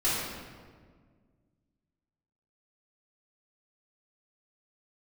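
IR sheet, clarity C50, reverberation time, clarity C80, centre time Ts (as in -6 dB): -2.0 dB, 1.7 s, 1.0 dB, 105 ms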